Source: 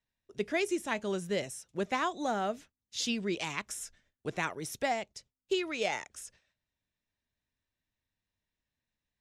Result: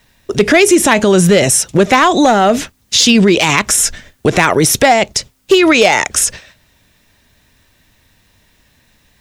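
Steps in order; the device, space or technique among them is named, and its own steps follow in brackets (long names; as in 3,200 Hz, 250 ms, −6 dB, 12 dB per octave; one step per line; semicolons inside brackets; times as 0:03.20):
loud club master (downward compressor 1.5 to 1, threshold −36 dBFS, peak gain reduction 4 dB; hard clipping −27.5 dBFS, distortion −21 dB; boost into a limiter +36 dB)
level −1 dB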